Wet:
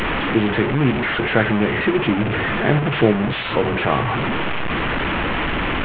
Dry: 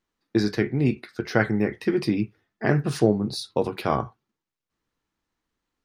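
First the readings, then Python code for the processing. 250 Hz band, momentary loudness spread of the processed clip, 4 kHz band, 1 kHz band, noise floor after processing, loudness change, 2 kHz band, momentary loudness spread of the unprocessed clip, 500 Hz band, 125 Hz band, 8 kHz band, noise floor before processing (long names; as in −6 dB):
+5.5 dB, 4 LU, +11.0 dB, +10.5 dB, −23 dBFS, +5.5 dB, +12.5 dB, 6 LU, +5.5 dB, +6.0 dB, below −15 dB, below −85 dBFS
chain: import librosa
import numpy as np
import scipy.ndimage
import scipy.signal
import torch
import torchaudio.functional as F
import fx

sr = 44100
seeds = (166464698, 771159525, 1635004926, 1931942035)

y = fx.delta_mod(x, sr, bps=16000, step_db=-18.5)
y = y * librosa.db_to_amplitude(4.0)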